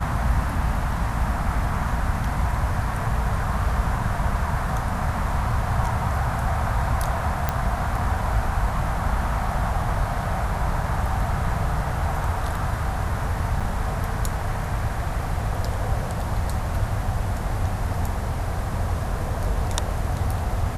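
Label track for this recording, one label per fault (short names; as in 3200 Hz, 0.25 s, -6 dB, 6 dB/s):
7.490000	7.490000	pop -8 dBFS
13.600000	13.610000	gap 5.5 ms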